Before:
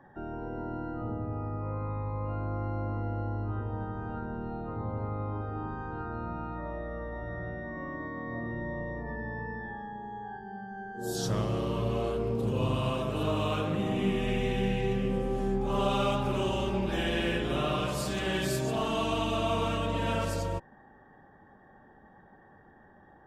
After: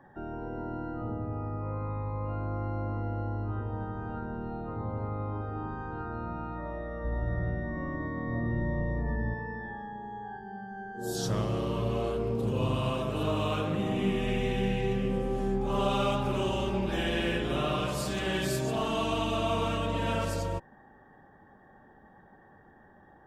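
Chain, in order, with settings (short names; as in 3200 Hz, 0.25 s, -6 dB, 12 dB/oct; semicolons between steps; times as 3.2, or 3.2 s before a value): 7.04–9.34 low shelf 190 Hz +11.5 dB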